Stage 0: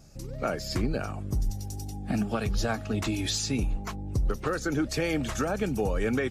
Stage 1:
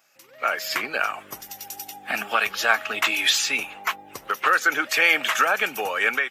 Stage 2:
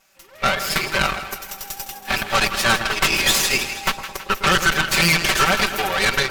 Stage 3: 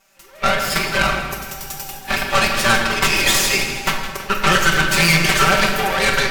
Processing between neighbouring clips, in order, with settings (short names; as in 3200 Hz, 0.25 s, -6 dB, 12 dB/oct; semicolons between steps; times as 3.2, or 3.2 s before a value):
HPF 1400 Hz 12 dB/oct; band shelf 6500 Hz -12 dB; AGC gain up to 12 dB; gain +6.5 dB
minimum comb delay 5.2 ms; split-band echo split 1100 Hz, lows 0.108 s, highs 0.161 s, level -10 dB; added harmonics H 5 -16 dB, 8 -13 dB, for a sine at -6.5 dBFS
shoebox room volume 620 m³, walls mixed, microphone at 1.2 m